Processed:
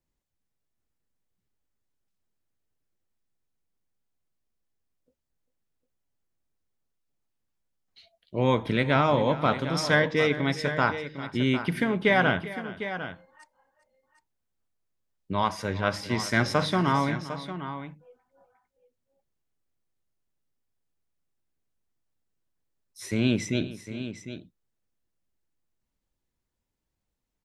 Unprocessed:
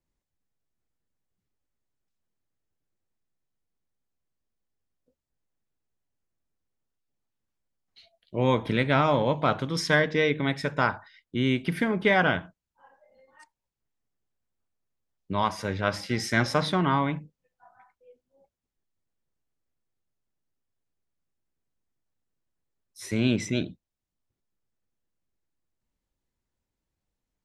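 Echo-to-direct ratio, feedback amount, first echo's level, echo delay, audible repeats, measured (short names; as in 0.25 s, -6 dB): -10.5 dB, no steady repeat, -16.5 dB, 0.397 s, 2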